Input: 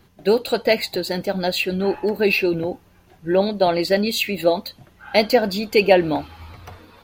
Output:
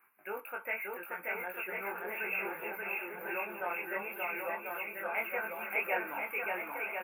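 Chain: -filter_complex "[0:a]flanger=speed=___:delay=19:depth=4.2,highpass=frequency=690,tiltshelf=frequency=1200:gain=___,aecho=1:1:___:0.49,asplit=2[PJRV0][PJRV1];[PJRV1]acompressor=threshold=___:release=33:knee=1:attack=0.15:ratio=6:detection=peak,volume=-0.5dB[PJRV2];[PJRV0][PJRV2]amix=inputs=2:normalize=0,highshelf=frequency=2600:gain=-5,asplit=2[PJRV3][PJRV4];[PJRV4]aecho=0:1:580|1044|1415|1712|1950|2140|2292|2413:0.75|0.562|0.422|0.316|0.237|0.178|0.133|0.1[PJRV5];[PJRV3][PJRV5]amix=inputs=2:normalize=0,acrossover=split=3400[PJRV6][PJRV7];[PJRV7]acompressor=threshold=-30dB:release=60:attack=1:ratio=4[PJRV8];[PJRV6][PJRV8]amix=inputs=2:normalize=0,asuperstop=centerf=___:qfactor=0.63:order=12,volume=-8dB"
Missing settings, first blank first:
0.44, -9, 0.8, -32dB, 5400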